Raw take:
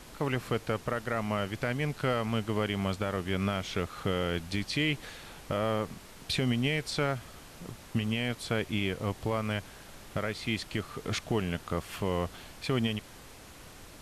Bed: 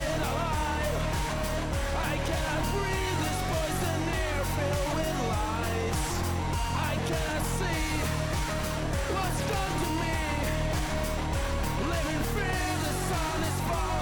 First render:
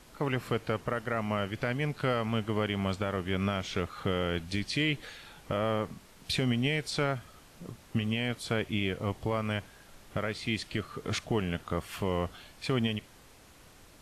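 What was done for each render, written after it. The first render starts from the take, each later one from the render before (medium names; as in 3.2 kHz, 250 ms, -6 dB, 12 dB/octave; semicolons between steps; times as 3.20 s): noise print and reduce 6 dB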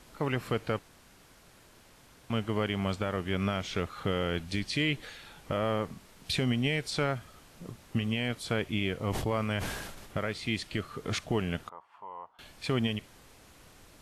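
0.79–2.30 s: room tone; 9.04–10.17 s: decay stretcher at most 37 dB/s; 11.69–12.39 s: band-pass filter 930 Hz, Q 7.3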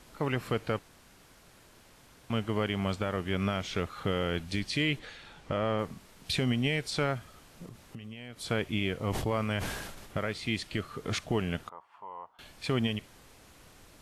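4.99–5.79 s: distance through air 53 m; 7.65–8.41 s: compression, threshold -41 dBFS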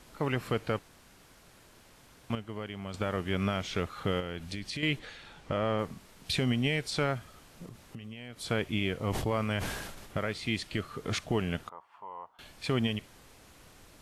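2.35–2.94 s: gain -9 dB; 4.20–4.83 s: compression 4:1, threshold -34 dBFS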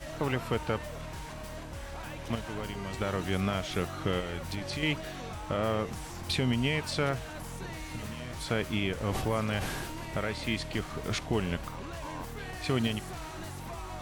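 add bed -11.5 dB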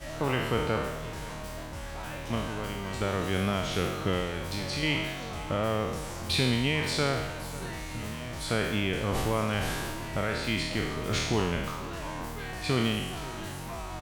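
spectral sustain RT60 1.08 s; delay 528 ms -18 dB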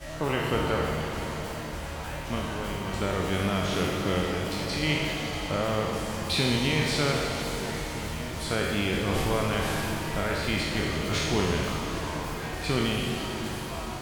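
pitch-shifted reverb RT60 4 s, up +7 st, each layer -8 dB, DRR 2.5 dB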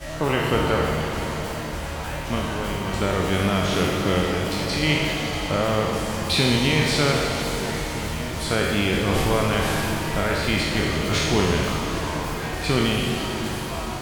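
trim +5.5 dB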